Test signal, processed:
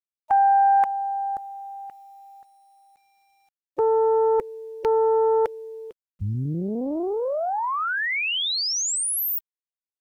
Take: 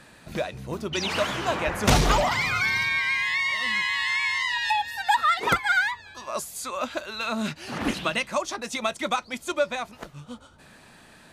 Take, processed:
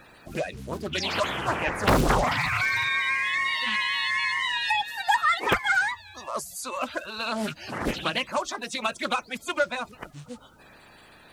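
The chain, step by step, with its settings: bin magnitudes rounded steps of 30 dB; bit-crush 11-bit; Doppler distortion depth 0.86 ms

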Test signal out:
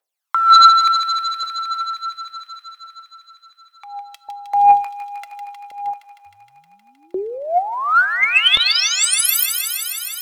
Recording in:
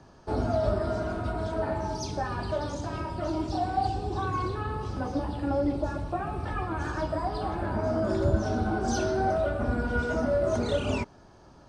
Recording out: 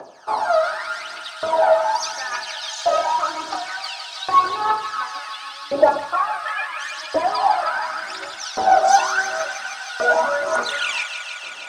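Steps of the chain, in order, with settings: LFO high-pass saw up 0.7 Hz 540–4000 Hz; phaser 0.85 Hz, delay 1.6 ms, feedback 71%; sine folder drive 6 dB, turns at -2 dBFS; on a send: thin delay 0.156 s, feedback 82%, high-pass 1700 Hz, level -7 dB; on the sum: two-slope reverb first 0.57 s, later 1.6 s, from -28 dB, DRR 20 dB; gain -1.5 dB

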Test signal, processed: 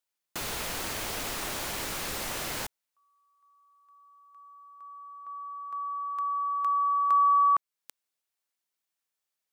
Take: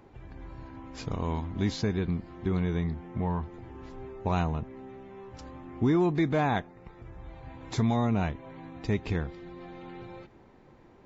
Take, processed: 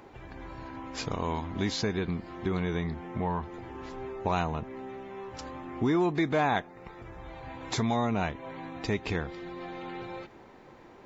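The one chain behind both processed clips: low shelf 260 Hz -10.5 dB; in parallel at +3 dB: compressor, threshold -38 dBFS

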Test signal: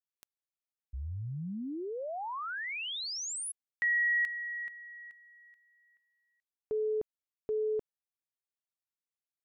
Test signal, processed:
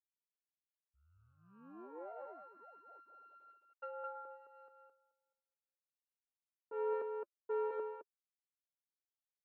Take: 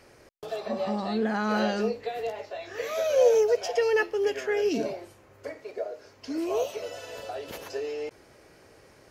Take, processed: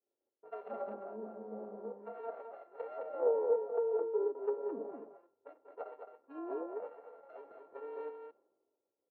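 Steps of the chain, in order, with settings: sample sorter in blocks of 32 samples; treble ducked by the level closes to 470 Hz, closed at -24 dBFS; flange 0.93 Hz, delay 2.7 ms, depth 1.8 ms, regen -46%; low-pass opened by the level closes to 560 Hz, open at -30 dBFS; ladder band-pass 570 Hz, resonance 30%; on a send: echo 0.215 s -4 dB; on the sum: three-band expander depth 70%; gain +5.5 dB

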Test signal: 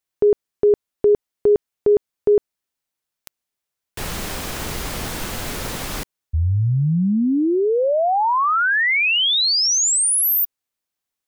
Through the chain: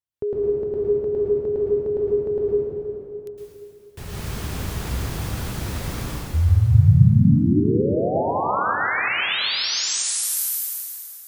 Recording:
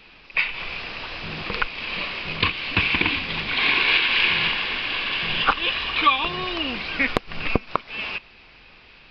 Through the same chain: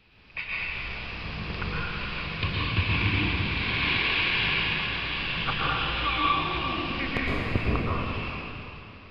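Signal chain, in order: bell 90 Hz +13.5 dB 2.1 oct; plate-style reverb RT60 3.1 s, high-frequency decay 0.8×, pre-delay 0.1 s, DRR -7 dB; gain -13 dB

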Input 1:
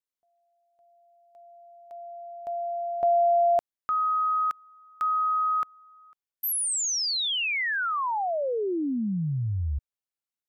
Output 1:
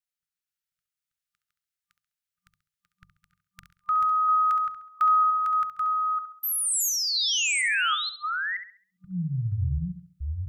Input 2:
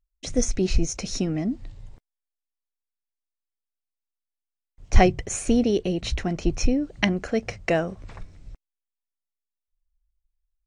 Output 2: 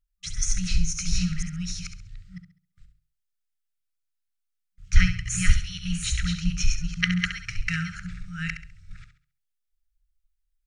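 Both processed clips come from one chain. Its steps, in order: reverse delay 0.476 s, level -3 dB; notches 50/100/150 Hz; FFT band-reject 190–1200 Hz; dynamic EQ 850 Hz, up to +4 dB, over -43 dBFS, Q 1.2; on a send: flutter echo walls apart 11.6 m, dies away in 0.43 s

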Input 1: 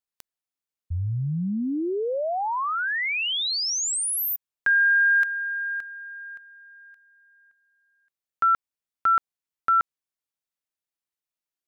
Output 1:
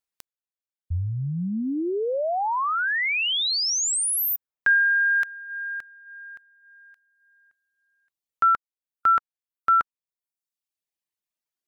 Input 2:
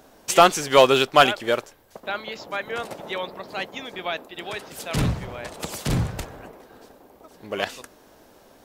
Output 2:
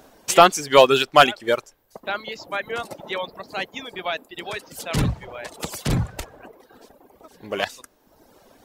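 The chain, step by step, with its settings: reverb removal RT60 1 s; gain +2 dB

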